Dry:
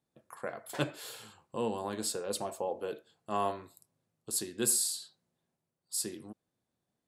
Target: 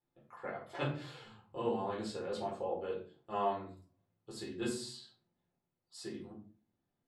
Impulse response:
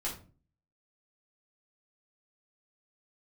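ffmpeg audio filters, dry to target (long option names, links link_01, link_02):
-filter_complex "[0:a]lowpass=3600[link_01];[1:a]atrim=start_sample=2205[link_02];[link_01][link_02]afir=irnorm=-1:irlink=0,volume=-4.5dB"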